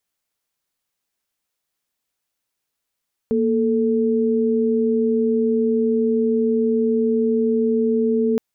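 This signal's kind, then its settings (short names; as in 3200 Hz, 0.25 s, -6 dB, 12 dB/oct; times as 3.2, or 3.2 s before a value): chord A#3/A4 sine, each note -18.5 dBFS 5.07 s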